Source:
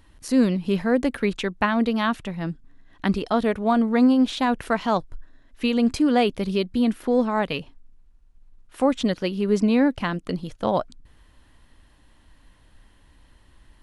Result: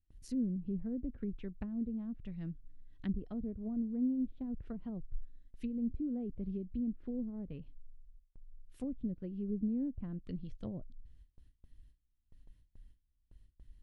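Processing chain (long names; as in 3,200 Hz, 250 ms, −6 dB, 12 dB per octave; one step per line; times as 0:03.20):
treble cut that deepens with the level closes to 440 Hz, closed at −18.5 dBFS
guitar amp tone stack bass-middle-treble 10-0-1
noise gate with hold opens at −51 dBFS
level +3 dB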